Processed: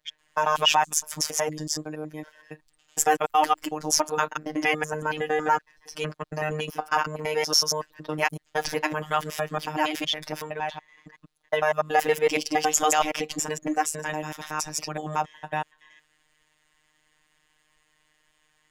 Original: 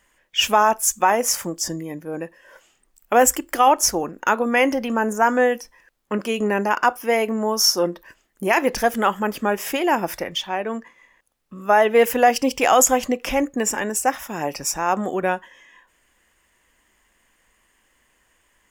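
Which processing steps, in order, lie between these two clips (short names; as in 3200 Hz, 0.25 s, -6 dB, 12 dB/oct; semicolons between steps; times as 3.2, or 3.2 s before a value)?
slices in reverse order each 93 ms, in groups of 4; fifteen-band EQ 400 Hz -4 dB, 4000 Hz +8 dB, 16000 Hz -9 dB; robotiser 153 Hz; gain -2.5 dB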